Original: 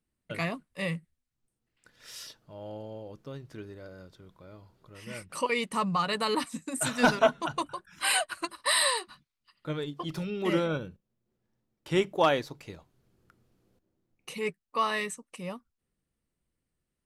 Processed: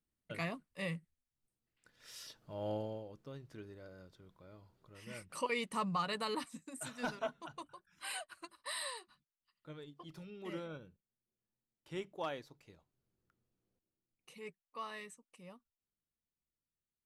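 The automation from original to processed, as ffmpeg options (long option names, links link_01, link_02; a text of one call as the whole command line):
ffmpeg -i in.wav -af "volume=3dB,afade=type=in:start_time=2.24:duration=0.47:silence=0.298538,afade=type=out:start_time=2.71:duration=0.37:silence=0.298538,afade=type=out:start_time=5.97:duration=0.96:silence=0.354813" out.wav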